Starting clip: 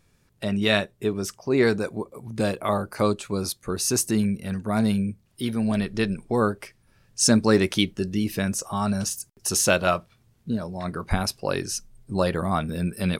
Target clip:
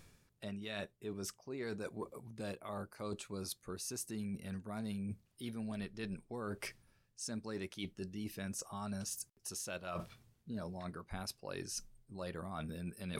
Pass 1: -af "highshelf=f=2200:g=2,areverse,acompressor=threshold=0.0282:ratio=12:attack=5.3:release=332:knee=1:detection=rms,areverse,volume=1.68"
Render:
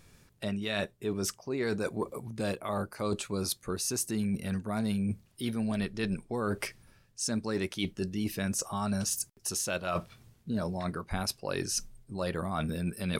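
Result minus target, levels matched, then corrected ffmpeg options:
compression: peak gain reduction -10.5 dB
-af "highshelf=f=2200:g=2,areverse,acompressor=threshold=0.0075:ratio=12:attack=5.3:release=332:knee=1:detection=rms,areverse,volume=1.68"

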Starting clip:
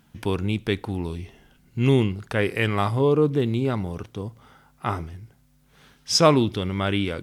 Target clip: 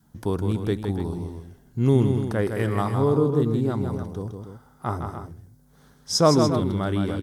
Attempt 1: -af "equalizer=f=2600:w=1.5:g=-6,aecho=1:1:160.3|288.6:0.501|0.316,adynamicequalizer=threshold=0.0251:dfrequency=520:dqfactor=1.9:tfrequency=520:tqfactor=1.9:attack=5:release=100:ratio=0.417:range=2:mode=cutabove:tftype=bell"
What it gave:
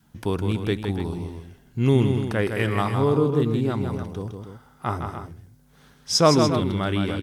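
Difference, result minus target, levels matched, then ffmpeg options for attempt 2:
2 kHz band +5.0 dB
-af "equalizer=f=2600:w=1.5:g=-17.5,aecho=1:1:160.3|288.6:0.501|0.316,adynamicequalizer=threshold=0.0251:dfrequency=520:dqfactor=1.9:tfrequency=520:tqfactor=1.9:attack=5:release=100:ratio=0.417:range=2:mode=cutabove:tftype=bell"

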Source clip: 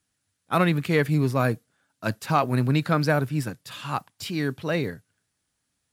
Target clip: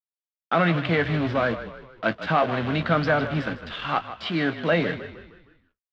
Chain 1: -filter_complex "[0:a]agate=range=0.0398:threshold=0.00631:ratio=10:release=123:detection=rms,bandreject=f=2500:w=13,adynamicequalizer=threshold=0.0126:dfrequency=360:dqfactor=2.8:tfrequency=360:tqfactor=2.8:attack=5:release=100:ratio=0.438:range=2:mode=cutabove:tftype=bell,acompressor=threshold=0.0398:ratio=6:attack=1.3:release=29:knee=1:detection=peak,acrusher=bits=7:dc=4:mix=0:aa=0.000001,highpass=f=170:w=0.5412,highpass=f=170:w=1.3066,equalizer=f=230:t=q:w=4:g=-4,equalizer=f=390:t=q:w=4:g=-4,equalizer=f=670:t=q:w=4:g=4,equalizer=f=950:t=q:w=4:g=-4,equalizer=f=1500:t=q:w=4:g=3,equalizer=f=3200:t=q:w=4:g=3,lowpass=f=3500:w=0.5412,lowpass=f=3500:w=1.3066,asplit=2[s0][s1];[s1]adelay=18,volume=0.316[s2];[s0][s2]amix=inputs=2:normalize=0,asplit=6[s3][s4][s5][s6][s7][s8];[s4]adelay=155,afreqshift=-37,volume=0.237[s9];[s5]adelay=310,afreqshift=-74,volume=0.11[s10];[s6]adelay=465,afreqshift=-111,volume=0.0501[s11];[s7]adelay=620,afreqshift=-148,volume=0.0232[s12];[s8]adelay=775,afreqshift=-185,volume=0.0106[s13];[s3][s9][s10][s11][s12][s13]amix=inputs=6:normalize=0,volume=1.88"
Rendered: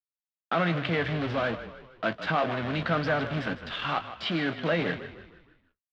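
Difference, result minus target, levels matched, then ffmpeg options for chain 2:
compression: peak gain reduction +5.5 dB
-filter_complex "[0:a]agate=range=0.0398:threshold=0.00631:ratio=10:release=123:detection=rms,bandreject=f=2500:w=13,adynamicequalizer=threshold=0.0126:dfrequency=360:dqfactor=2.8:tfrequency=360:tqfactor=2.8:attack=5:release=100:ratio=0.438:range=2:mode=cutabove:tftype=bell,acompressor=threshold=0.0841:ratio=6:attack=1.3:release=29:knee=1:detection=peak,acrusher=bits=7:dc=4:mix=0:aa=0.000001,highpass=f=170:w=0.5412,highpass=f=170:w=1.3066,equalizer=f=230:t=q:w=4:g=-4,equalizer=f=390:t=q:w=4:g=-4,equalizer=f=670:t=q:w=4:g=4,equalizer=f=950:t=q:w=4:g=-4,equalizer=f=1500:t=q:w=4:g=3,equalizer=f=3200:t=q:w=4:g=3,lowpass=f=3500:w=0.5412,lowpass=f=3500:w=1.3066,asplit=2[s0][s1];[s1]adelay=18,volume=0.316[s2];[s0][s2]amix=inputs=2:normalize=0,asplit=6[s3][s4][s5][s6][s7][s8];[s4]adelay=155,afreqshift=-37,volume=0.237[s9];[s5]adelay=310,afreqshift=-74,volume=0.11[s10];[s6]adelay=465,afreqshift=-111,volume=0.0501[s11];[s7]adelay=620,afreqshift=-148,volume=0.0232[s12];[s8]adelay=775,afreqshift=-185,volume=0.0106[s13];[s3][s9][s10][s11][s12][s13]amix=inputs=6:normalize=0,volume=1.88"

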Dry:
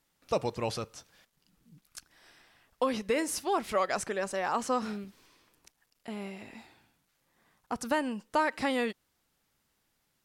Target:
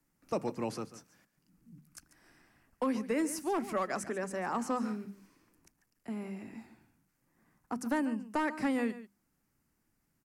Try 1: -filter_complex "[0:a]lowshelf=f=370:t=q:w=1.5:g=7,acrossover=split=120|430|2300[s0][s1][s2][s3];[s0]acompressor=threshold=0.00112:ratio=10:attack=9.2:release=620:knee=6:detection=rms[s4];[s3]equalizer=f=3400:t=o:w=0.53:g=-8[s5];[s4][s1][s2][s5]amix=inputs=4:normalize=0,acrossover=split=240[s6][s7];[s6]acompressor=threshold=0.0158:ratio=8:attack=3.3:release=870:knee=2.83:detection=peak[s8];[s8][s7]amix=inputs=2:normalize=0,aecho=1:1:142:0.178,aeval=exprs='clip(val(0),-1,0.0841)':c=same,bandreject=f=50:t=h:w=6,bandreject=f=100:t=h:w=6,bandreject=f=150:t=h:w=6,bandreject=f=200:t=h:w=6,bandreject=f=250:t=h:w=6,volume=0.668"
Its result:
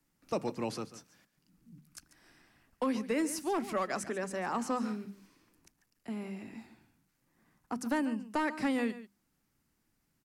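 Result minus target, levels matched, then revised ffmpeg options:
4 kHz band +3.5 dB
-filter_complex "[0:a]lowshelf=f=370:t=q:w=1.5:g=7,acrossover=split=120|430|2300[s0][s1][s2][s3];[s0]acompressor=threshold=0.00112:ratio=10:attack=9.2:release=620:knee=6:detection=rms[s4];[s3]equalizer=f=3400:t=o:w=0.53:g=-19.5[s5];[s4][s1][s2][s5]amix=inputs=4:normalize=0,acrossover=split=240[s6][s7];[s6]acompressor=threshold=0.0158:ratio=8:attack=3.3:release=870:knee=2.83:detection=peak[s8];[s8][s7]amix=inputs=2:normalize=0,aecho=1:1:142:0.178,aeval=exprs='clip(val(0),-1,0.0841)':c=same,bandreject=f=50:t=h:w=6,bandreject=f=100:t=h:w=6,bandreject=f=150:t=h:w=6,bandreject=f=200:t=h:w=6,bandreject=f=250:t=h:w=6,volume=0.668"

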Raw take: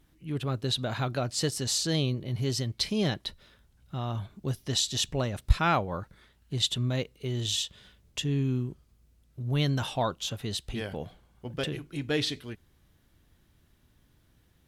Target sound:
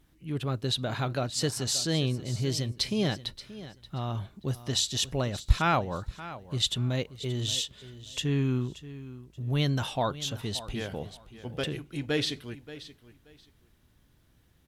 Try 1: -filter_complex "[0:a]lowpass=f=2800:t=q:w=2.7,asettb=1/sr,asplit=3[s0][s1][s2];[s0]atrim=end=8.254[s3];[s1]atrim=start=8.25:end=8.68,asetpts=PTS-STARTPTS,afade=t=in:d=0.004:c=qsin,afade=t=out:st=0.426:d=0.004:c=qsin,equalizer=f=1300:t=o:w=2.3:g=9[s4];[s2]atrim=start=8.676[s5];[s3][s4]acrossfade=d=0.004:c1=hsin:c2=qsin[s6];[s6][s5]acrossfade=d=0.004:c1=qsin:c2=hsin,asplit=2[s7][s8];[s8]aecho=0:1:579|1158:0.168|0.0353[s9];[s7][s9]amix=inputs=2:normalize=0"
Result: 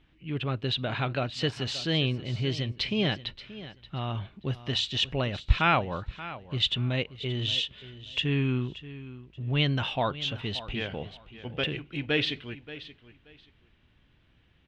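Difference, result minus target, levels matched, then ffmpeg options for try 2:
2 kHz band +4.5 dB
-filter_complex "[0:a]asettb=1/sr,asplit=3[s0][s1][s2];[s0]atrim=end=8.254[s3];[s1]atrim=start=8.25:end=8.68,asetpts=PTS-STARTPTS,afade=t=in:d=0.004:c=qsin,afade=t=out:st=0.426:d=0.004:c=qsin,equalizer=f=1300:t=o:w=2.3:g=9[s4];[s2]atrim=start=8.676[s5];[s3][s4]acrossfade=d=0.004:c1=hsin:c2=qsin[s6];[s6][s5]acrossfade=d=0.004:c1=qsin:c2=hsin,asplit=2[s7][s8];[s8]aecho=0:1:579|1158:0.168|0.0353[s9];[s7][s9]amix=inputs=2:normalize=0"

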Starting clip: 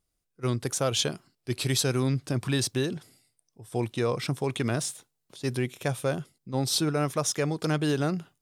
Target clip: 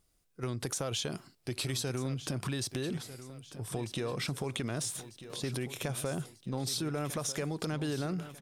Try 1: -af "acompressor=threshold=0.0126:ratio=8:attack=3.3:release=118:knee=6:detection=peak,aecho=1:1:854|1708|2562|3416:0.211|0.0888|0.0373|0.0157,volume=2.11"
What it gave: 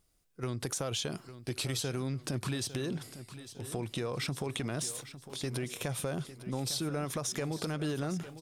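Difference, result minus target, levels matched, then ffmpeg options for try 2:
echo 391 ms early
-af "acompressor=threshold=0.0126:ratio=8:attack=3.3:release=118:knee=6:detection=peak,aecho=1:1:1245|2490|3735|4980:0.211|0.0888|0.0373|0.0157,volume=2.11"

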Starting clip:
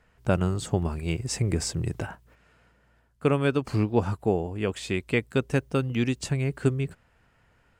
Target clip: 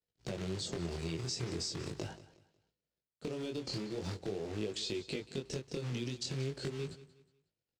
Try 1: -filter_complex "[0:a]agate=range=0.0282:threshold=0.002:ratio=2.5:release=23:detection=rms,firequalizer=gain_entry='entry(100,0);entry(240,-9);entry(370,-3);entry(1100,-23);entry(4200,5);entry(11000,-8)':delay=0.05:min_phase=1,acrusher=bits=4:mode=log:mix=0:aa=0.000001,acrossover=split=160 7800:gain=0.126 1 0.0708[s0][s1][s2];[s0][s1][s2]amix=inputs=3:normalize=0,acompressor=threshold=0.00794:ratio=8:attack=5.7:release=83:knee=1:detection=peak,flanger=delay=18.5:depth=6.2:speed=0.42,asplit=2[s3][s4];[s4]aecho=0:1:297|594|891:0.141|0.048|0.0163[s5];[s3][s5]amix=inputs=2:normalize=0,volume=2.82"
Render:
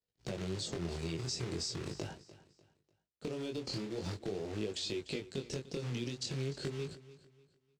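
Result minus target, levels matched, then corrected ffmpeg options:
echo 115 ms late
-filter_complex "[0:a]agate=range=0.0282:threshold=0.002:ratio=2.5:release=23:detection=rms,firequalizer=gain_entry='entry(100,0);entry(240,-9);entry(370,-3);entry(1100,-23);entry(4200,5);entry(11000,-8)':delay=0.05:min_phase=1,acrusher=bits=4:mode=log:mix=0:aa=0.000001,acrossover=split=160 7800:gain=0.126 1 0.0708[s0][s1][s2];[s0][s1][s2]amix=inputs=3:normalize=0,acompressor=threshold=0.00794:ratio=8:attack=5.7:release=83:knee=1:detection=peak,flanger=delay=18.5:depth=6.2:speed=0.42,asplit=2[s3][s4];[s4]aecho=0:1:182|364|546:0.141|0.048|0.0163[s5];[s3][s5]amix=inputs=2:normalize=0,volume=2.82"

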